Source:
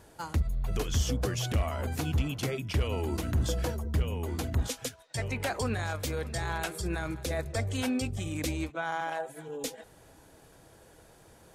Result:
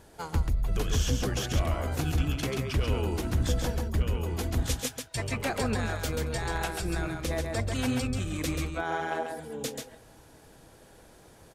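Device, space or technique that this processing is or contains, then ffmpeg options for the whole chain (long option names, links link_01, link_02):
octave pedal: -filter_complex "[0:a]asettb=1/sr,asplit=3[link_01][link_02][link_03];[link_01]atrim=end=4.404[link_04];[link_02]atrim=start=4.4:end=5.32,asetpts=PTS-STARTPTS,afade=type=in:duration=0.004:curve=qsin,afade=type=out:start_time=0.916:duration=0.004:curve=qsin,highshelf=frequency=7000:gain=4.5[link_05];[link_03]atrim=start=5.316[link_06];[link_04][link_05]acrossfade=duration=0.004:curve1=hsin:curve2=qsin[link_07];[link_07][link_06]acrossfade=duration=0.004:curve1=qsin:curve2=hsin,asplit=2[link_08][link_09];[link_09]asetrate=22050,aresample=44100,atempo=2,volume=-7dB[link_10];[link_08][link_10]amix=inputs=2:normalize=0,aecho=1:1:136:0.596"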